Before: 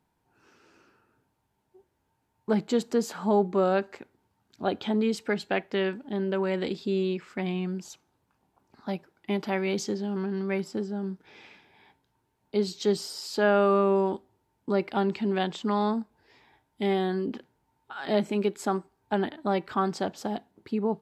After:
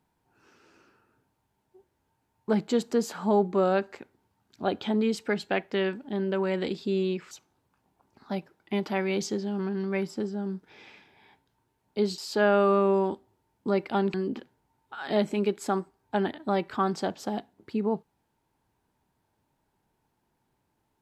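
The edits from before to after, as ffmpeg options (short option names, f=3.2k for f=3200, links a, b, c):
-filter_complex "[0:a]asplit=4[a][b][c][d];[a]atrim=end=7.312[e];[b]atrim=start=7.878:end=12.752[f];[c]atrim=start=13.198:end=15.162[g];[d]atrim=start=17.118[h];[e][f]acrossfade=d=0.004:c1=hsin:c2=hsin[i];[i][g]acrossfade=d=0.004:c1=hsin:c2=hsin[j];[j][h]acrossfade=d=0.004:c1=hsin:c2=hsin"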